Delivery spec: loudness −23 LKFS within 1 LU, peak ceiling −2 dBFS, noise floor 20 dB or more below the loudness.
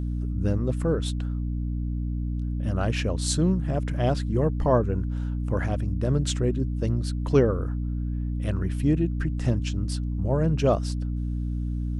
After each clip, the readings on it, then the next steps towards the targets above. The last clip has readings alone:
mains hum 60 Hz; hum harmonics up to 300 Hz; level of the hum −25 dBFS; integrated loudness −26.5 LKFS; sample peak −7.5 dBFS; target loudness −23.0 LKFS
→ hum removal 60 Hz, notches 5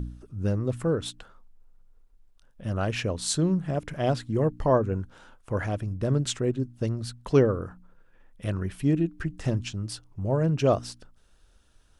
mains hum none found; integrated loudness −27.5 LKFS; sample peak −8.5 dBFS; target loudness −23.0 LKFS
→ level +4.5 dB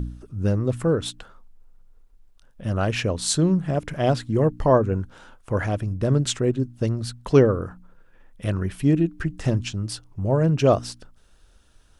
integrated loudness −23.0 LKFS; sample peak −4.0 dBFS; background noise floor −55 dBFS

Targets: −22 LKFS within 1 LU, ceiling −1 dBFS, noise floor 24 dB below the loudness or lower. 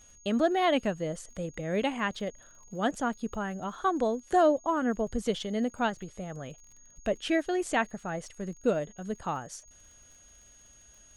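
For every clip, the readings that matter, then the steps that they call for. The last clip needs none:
crackle rate 41 per second; interfering tone 6,600 Hz; level of the tone −55 dBFS; integrated loudness −30.5 LKFS; sample peak −13.5 dBFS; target loudness −22.0 LKFS
→ click removal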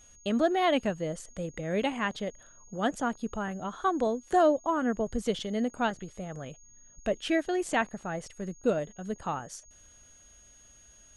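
crackle rate 0 per second; interfering tone 6,600 Hz; level of the tone −55 dBFS
→ notch filter 6,600 Hz, Q 30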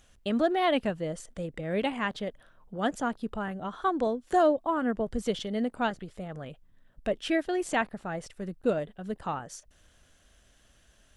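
interfering tone none found; integrated loudness −30.5 LKFS; sample peak −13.5 dBFS; target loudness −22.0 LKFS
→ level +8.5 dB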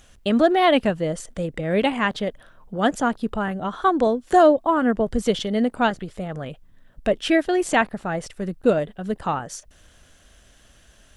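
integrated loudness −22.0 LKFS; sample peak −5.0 dBFS; background noise floor −54 dBFS

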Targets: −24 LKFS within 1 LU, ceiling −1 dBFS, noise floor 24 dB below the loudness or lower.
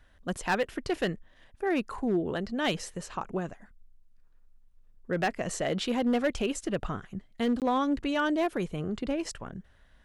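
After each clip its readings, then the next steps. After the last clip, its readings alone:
share of clipped samples 0.6%; peaks flattened at −20.5 dBFS; number of dropouts 1; longest dropout 18 ms; integrated loudness −30.5 LKFS; sample peak −20.5 dBFS; target loudness −24.0 LKFS
→ clipped peaks rebuilt −20.5 dBFS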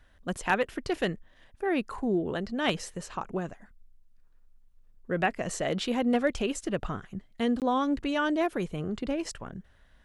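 share of clipped samples 0.0%; number of dropouts 1; longest dropout 18 ms
→ repair the gap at 0:07.60, 18 ms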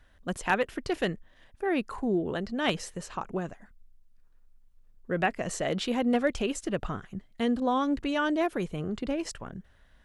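number of dropouts 0; integrated loudness −30.5 LKFS; sample peak −11.5 dBFS; target loudness −24.0 LKFS
→ level +6.5 dB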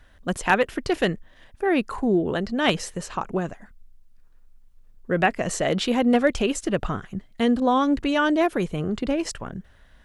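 integrated loudness −24.0 LKFS; sample peak −5.0 dBFS; background noise floor −54 dBFS

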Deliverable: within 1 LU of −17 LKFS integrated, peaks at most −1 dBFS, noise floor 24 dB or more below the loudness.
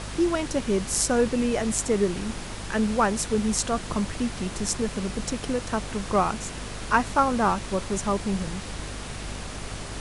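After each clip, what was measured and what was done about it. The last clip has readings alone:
mains hum 50 Hz; hum harmonics up to 250 Hz; level of the hum −36 dBFS; background noise floor −36 dBFS; target noise floor −51 dBFS; integrated loudness −26.5 LKFS; sample peak −6.0 dBFS; target loudness −17.0 LKFS
→ mains-hum notches 50/100/150/200/250 Hz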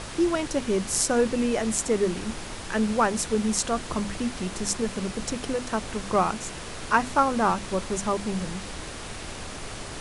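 mains hum none found; background noise floor −38 dBFS; target noise floor −51 dBFS
→ noise reduction from a noise print 13 dB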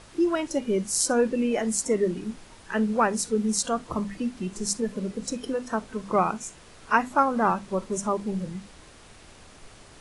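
background noise floor −50 dBFS; target noise floor −51 dBFS
→ noise reduction from a noise print 6 dB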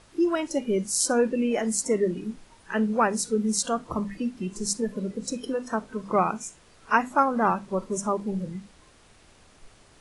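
background noise floor −56 dBFS; integrated loudness −26.5 LKFS; sample peak −6.0 dBFS; target loudness −17.0 LKFS
→ level +9.5 dB
brickwall limiter −1 dBFS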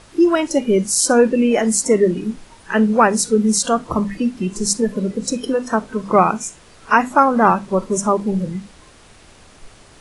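integrated loudness −17.5 LKFS; sample peak −1.0 dBFS; background noise floor −47 dBFS

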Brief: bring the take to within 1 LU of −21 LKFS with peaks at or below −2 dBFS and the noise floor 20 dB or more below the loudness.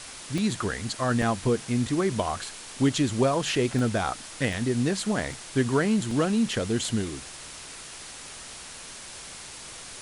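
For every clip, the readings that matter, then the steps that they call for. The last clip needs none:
number of dropouts 6; longest dropout 1.8 ms; background noise floor −42 dBFS; target noise floor −47 dBFS; integrated loudness −26.5 LKFS; sample peak −11.5 dBFS; target loudness −21.0 LKFS
→ repair the gap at 0:00.38/0:01.22/0:03.79/0:04.53/0:05.33/0:06.11, 1.8 ms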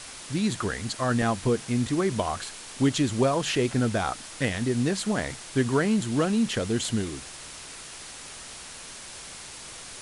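number of dropouts 0; background noise floor −42 dBFS; target noise floor −47 dBFS
→ broadband denoise 6 dB, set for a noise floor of −42 dBFS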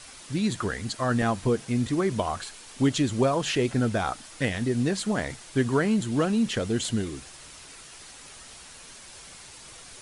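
background noise floor −47 dBFS; integrated loudness −26.5 LKFS; sample peak −12.0 dBFS; target loudness −21.0 LKFS
→ level +5.5 dB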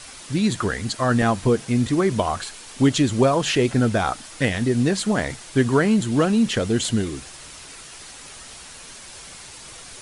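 integrated loudness −21.0 LKFS; sample peak −6.5 dBFS; background noise floor −41 dBFS

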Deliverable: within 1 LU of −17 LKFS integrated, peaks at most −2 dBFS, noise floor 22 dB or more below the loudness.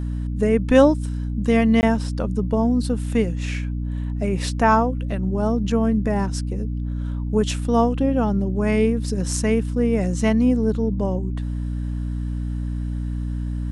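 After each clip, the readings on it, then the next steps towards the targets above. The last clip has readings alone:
number of dropouts 1; longest dropout 19 ms; mains hum 60 Hz; hum harmonics up to 300 Hz; level of the hum −23 dBFS; integrated loudness −22.0 LKFS; sample peak −2.0 dBFS; target loudness −17.0 LKFS
→ repair the gap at 0:01.81, 19 ms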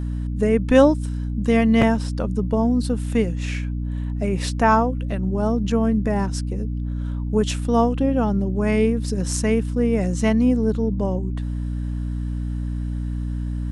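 number of dropouts 0; mains hum 60 Hz; hum harmonics up to 300 Hz; level of the hum −23 dBFS
→ mains-hum notches 60/120/180/240/300 Hz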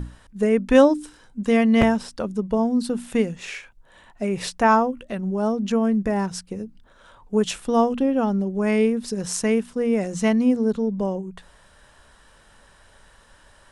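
mains hum none found; integrated loudness −22.0 LKFS; sample peak −3.0 dBFS; target loudness −17.0 LKFS
→ level +5 dB
brickwall limiter −2 dBFS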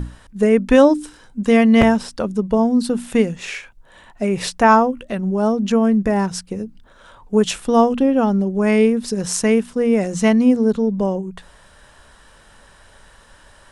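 integrated loudness −17.0 LKFS; sample peak −2.0 dBFS; background noise floor −49 dBFS

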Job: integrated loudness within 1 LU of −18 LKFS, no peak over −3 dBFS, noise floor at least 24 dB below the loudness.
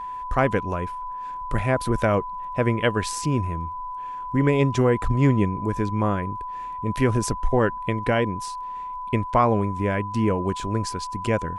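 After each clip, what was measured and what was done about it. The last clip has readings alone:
crackle rate 22 per second; interfering tone 1,000 Hz; level of the tone −30 dBFS; integrated loudness −24.5 LKFS; sample peak −6.5 dBFS; target loudness −18.0 LKFS
→ click removal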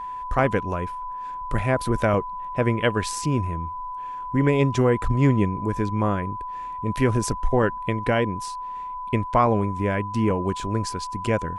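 crackle rate 0 per second; interfering tone 1,000 Hz; level of the tone −30 dBFS
→ notch filter 1,000 Hz, Q 30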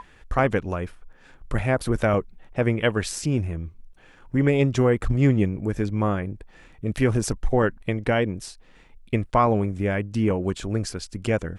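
interfering tone none found; integrated loudness −24.0 LKFS; sample peak −7.0 dBFS; target loudness −18.0 LKFS
→ level +6 dB
brickwall limiter −3 dBFS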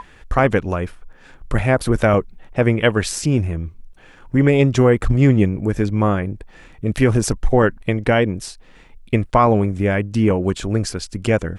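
integrated loudness −18.5 LKFS; sample peak −3.0 dBFS; background noise floor −46 dBFS

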